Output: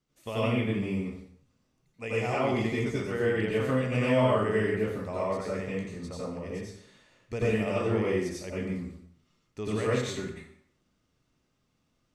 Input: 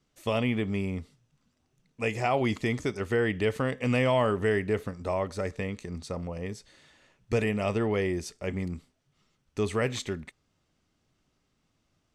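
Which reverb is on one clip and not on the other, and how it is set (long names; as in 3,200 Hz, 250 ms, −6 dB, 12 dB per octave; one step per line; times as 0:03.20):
dense smooth reverb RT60 0.66 s, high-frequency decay 0.8×, pre-delay 75 ms, DRR −7 dB
level −8.5 dB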